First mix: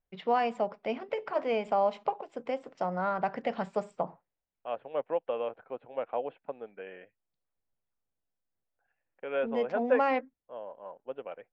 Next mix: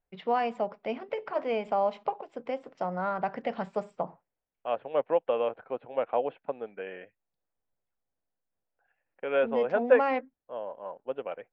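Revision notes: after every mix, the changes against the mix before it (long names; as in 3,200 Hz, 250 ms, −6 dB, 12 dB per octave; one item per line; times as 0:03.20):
first voice: add high-frequency loss of the air 57 metres
second voice +5.0 dB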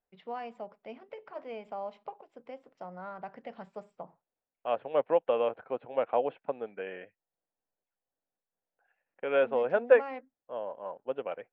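first voice −11.5 dB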